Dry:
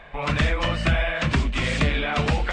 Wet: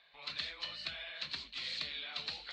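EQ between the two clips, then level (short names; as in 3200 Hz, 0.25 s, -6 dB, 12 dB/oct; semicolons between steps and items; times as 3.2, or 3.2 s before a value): band-pass 4200 Hz, Q 11; tilt -2 dB/oct; +8.0 dB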